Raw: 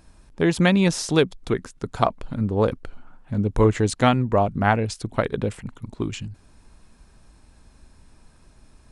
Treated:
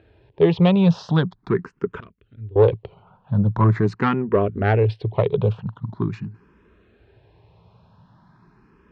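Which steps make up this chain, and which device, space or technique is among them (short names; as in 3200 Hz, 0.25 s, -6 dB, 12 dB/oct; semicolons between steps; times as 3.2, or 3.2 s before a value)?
barber-pole phaser into a guitar amplifier (endless phaser +0.43 Hz; soft clip -16 dBFS, distortion -16 dB; speaker cabinet 95–3400 Hz, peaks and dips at 110 Hz +9 dB, 170 Hz +6 dB, 260 Hz -5 dB, 410 Hz +9 dB, 990 Hz +4 dB, 2200 Hz -4 dB); 2–2.56 passive tone stack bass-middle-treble 6-0-2; gain +4 dB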